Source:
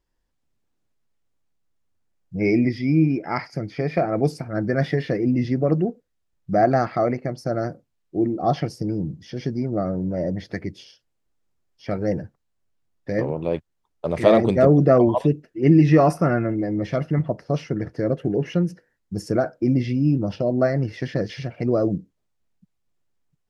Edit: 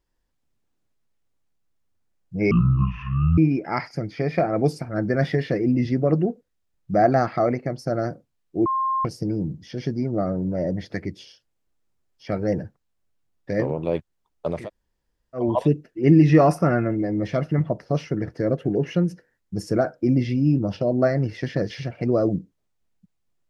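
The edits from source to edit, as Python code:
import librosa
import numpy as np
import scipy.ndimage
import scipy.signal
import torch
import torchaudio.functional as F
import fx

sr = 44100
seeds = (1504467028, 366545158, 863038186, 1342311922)

y = fx.edit(x, sr, fx.speed_span(start_s=2.51, length_s=0.46, speed=0.53),
    fx.bleep(start_s=8.25, length_s=0.39, hz=1060.0, db=-20.0),
    fx.room_tone_fill(start_s=14.17, length_s=0.87, crossfade_s=0.24), tone=tone)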